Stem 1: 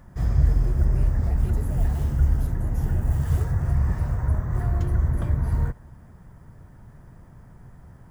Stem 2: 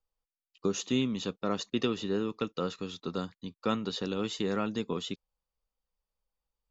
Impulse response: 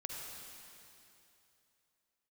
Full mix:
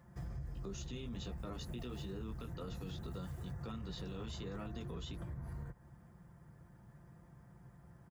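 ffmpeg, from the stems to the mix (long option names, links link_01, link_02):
-filter_complex "[0:a]highpass=frequency=51:width=0.5412,highpass=frequency=51:width=1.3066,aecho=1:1:5.8:0.52,acompressor=threshold=-30dB:ratio=6,volume=-11dB[link_01];[1:a]acrossover=split=170[link_02][link_03];[link_03]acompressor=threshold=-42dB:ratio=1.5[link_04];[link_02][link_04]amix=inputs=2:normalize=0,flanger=delay=15.5:depth=2:speed=1.5,volume=-4.5dB[link_05];[link_01][link_05]amix=inputs=2:normalize=0,alimiter=level_in=12dB:limit=-24dB:level=0:latency=1:release=25,volume=-12dB"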